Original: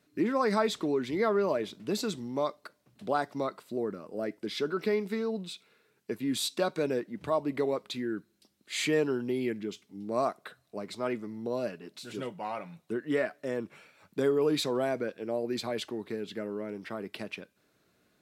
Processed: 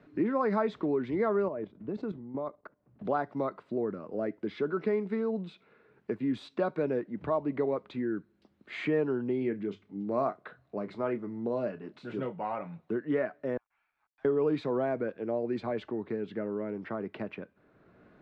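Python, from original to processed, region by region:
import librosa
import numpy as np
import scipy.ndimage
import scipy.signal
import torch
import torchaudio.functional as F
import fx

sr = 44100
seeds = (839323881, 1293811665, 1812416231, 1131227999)

y = fx.chain(x, sr, fx.lowpass(hz=1000.0, slope=6),
    fx.level_steps(step_db=12), at=(1.48, 3.05))
y = fx.chain(y, sr, fx.hum_notches(base_hz=50, count=2),
    fx.doubler(ms=30.0, db=-12), at=(9.39, 12.67))
y = fx.chain(y, sr, fx.steep_highpass(hz=700.0, slope=96),
    fx.leveller(passes=5),
    fx.gate_flip(shuts_db=-37.0, range_db=-38), at=(13.57, 14.25))
y = scipy.signal.sosfilt(scipy.signal.butter(2, 1700.0, 'lowpass', fs=sr, output='sos'), y)
y = fx.low_shelf(y, sr, hz=64.0, db=8.0)
y = fx.band_squash(y, sr, depth_pct=40)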